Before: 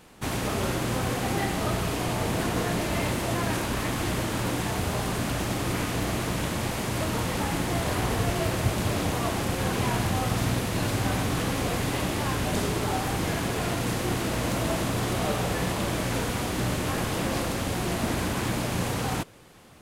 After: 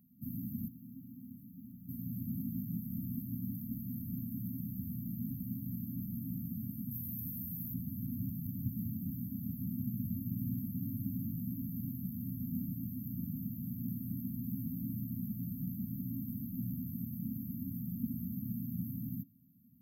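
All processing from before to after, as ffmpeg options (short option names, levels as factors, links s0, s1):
-filter_complex "[0:a]asettb=1/sr,asplit=3[s0][s1][s2];[s0]atrim=end=0.684[s3];[s1]atrim=start=0.68:end=1.89,asetpts=PTS-STARTPTS,afade=t=in:d=0.004:c=qsin,afade=t=out:st=1.206:d=0.004:c=qsin,acrossover=split=320 5000:gain=0.224 1 0.2[s4][s5][s6];[s4][s5][s6]amix=inputs=3:normalize=0,aeval=exprs='clip(val(0),-1,0.0168)':c=same[s7];[s2]atrim=start=1.886[s8];[s3][s7]acrossfade=d=0.004:c1=hsin:c2=qsin[s9];[s9][s8]acrossfade=d=0.004:c1=qsin:c2=hsin,asettb=1/sr,asplit=3[s10][s11][s12];[s10]atrim=end=6.914[s13];[s11]atrim=start=6.91:end=7.74,asetpts=PTS-STARTPTS,afade=t=in:d=0.004:c=qsin,afade=t=out:st=0.826:d=0.004:c=qsin,acrossover=split=140|3000[s14][s15][s16];[s15]acompressor=threshold=0.0178:ratio=3:attack=3.2:release=140:knee=2.83:detection=peak[s17];[s14][s17][s16]amix=inputs=3:normalize=0,highshelf=f=10000:g=11[s18];[s12]atrim=start=7.736[s19];[s13][s18]acrossfade=d=0.004:c1=hsin:c2=qsin[s20];[s20][s19]acrossfade=d=0.004:c1=qsin:c2=hsin,highpass=120,lowshelf=f=170:g=-9.5,afftfilt=real='re*(1-between(b*sr/4096,270,12000))':imag='im*(1-between(b*sr/4096,270,12000))':win_size=4096:overlap=0.75,volume=0.841"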